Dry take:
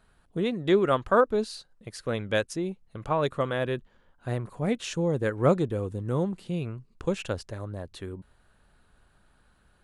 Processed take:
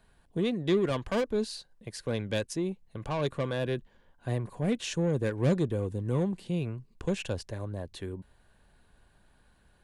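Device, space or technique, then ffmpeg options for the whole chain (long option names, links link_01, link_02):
one-band saturation: -filter_complex "[0:a]acrossover=split=300|3300[link_01][link_02][link_03];[link_02]asoftclip=type=tanh:threshold=-28dB[link_04];[link_01][link_04][link_03]amix=inputs=3:normalize=0,bandreject=frequency=1300:width=5.5"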